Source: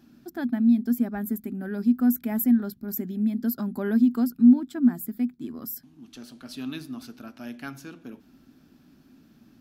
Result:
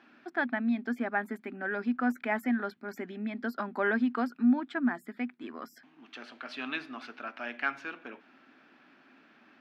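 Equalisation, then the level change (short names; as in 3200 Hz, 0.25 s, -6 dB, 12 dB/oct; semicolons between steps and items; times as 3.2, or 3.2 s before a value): HPF 600 Hz 12 dB/oct; synth low-pass 2200 Hz, resonance Q 1.7; +6.5 dB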